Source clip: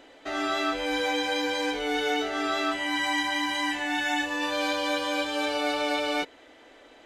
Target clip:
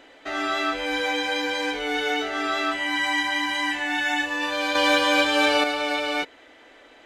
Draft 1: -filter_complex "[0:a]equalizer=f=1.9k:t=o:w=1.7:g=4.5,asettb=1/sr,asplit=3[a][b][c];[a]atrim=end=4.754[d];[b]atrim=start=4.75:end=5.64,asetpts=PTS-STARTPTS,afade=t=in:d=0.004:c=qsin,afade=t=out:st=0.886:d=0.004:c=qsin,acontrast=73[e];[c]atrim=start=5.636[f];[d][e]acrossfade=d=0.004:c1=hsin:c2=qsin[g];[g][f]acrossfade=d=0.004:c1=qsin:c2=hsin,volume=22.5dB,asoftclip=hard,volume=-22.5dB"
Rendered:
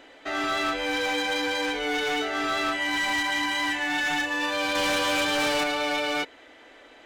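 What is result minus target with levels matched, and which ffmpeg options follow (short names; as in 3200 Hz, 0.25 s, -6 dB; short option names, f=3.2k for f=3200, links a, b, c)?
overloaded stage: distortion +23 dB
-filter_complex "[0:a]equalizer=f=1.9k:t=o:w=1.7:g=4.5,asettb=1/sr,asplit=3[a][b][c];[a]atrim=end=4.754[d];[b]atrim=start=4.75:end=5.64,asetpts=PTS-STARTPTS,afade=t=in:d=0.004:c=qsin,afade=t=out:st=0.886:d=0.004:c=qsin,acontrast=73[e];[c]atrim=start=5.636[f];[d][e]acrossfade=d=0.004:c1=hsin:c2=qsin[g];[g][f]acrossfade=d=0.004:c1=qsin:c2=hsin,volume=11.5dB,asoftclip=hard,volume=-11.5dB"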